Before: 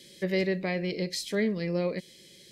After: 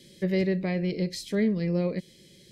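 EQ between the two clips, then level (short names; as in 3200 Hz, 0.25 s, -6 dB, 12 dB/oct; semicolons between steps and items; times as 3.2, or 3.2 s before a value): low shelf 310 Hz +11.5 dB; -3.5 dB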